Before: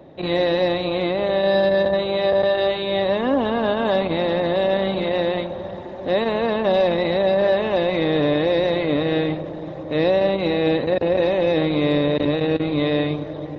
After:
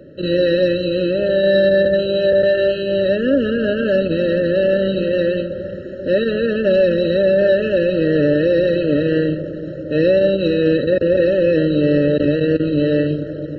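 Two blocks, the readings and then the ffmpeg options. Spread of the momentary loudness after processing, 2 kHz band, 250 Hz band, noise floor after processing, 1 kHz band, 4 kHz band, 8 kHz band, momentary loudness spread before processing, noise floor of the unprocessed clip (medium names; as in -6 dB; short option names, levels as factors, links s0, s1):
6 LU, +2.5 dB, +4.5 dB, -28 dBFS, under -15 dB, -1.0 dB, no reading, 5 LU, -32 dBFS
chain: -af "afftfilt=real='re*eq(mod(floor(b*sr/1024/640),2),0)':imag='im*eq(mod(floor(b*sr/1024/640),2),0)':win_size=1024:overlap=0.75,volume=1.68"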